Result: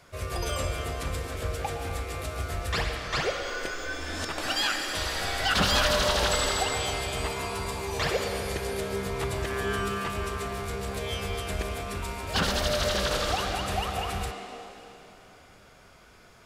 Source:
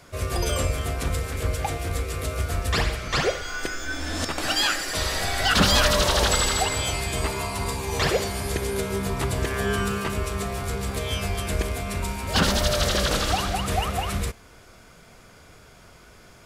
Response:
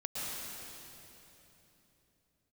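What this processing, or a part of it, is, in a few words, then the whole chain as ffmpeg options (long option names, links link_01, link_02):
filtered reverb send: -filter_complex "[0:a]asplit=2[link_01][link_02];[link_02]highpass=frequency=250:width=0.5412,highpass=frequency=250:width=1.3066,lowpass=5700[link_03];[1:a]atrim=start_sample=2205[link_04];[link_03][link_04]afir=irnorm=-1:irlink=0,volume=-6dB[link_05];[link_01][link_05]amix=inputs=2:normalize=0,volume=-6.5dB"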